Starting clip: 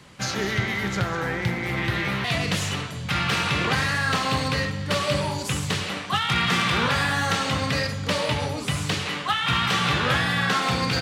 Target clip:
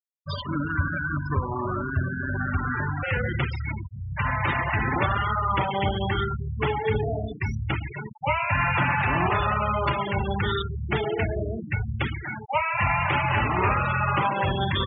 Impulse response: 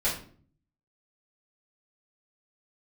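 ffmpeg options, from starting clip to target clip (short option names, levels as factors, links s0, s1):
-af "asetrate=32667,aresample=44100,afftfilt=real='re*gte(hypot(re,im),0.1)':imag='im*gte(hypot(re,im),0.1)':win_size=1024:overlap=0.75"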